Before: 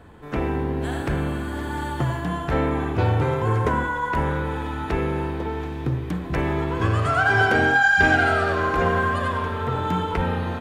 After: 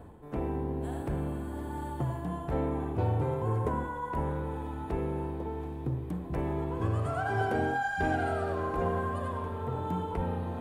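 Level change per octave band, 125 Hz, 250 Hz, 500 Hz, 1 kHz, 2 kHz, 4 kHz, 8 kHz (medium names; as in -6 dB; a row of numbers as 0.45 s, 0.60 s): -8.0 dB, -8.0 dB, -8.0 dB, -10.0 dB, -18.0 dB, -18.0 dB, under -10 dB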